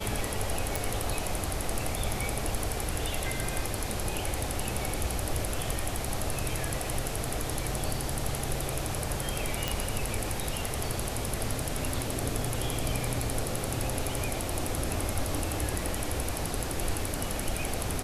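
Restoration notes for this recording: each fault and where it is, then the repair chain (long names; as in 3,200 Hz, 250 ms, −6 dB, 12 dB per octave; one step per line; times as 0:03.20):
0:00.76: click
0:09.68: click −11 dBFS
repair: click removal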